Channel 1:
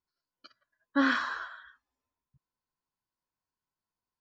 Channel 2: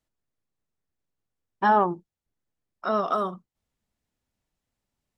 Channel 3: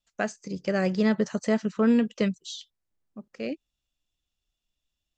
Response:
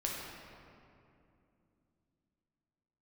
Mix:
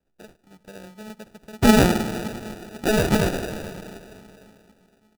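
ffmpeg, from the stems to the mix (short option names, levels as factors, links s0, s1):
-filter_complex "[0:a]highpass=380,adelay=2300,volume=0.422,asplit=2[s0][s1];[s1]volume=0.562[s2];[1:a]volume=1.41,asplit=2[s3][s4];[s4]volume=0.447[s5];[2:a]highshelf=f=3700:g=10,volume=0.133,asplit=2[s6][s7];[s7]volume=0.0944[s8];[3:a]atrim=start_sample=2205[s9];[s2][s5][s8]amix=inputs=3:normalize=0[s10];[s10][s9]afir=irnorm=-1:irlink=0[s11];[s0][s3][s6][s11]amix=inputs=4:normalize=0,acrusher=samples=41:mix=1:aa=0.000001"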